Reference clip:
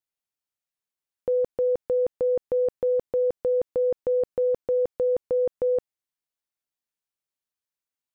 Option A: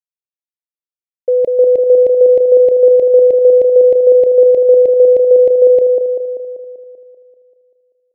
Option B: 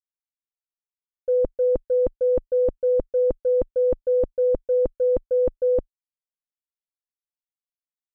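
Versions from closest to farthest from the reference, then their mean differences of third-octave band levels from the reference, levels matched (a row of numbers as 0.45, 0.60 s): B, A; 3.0, 4.0 dB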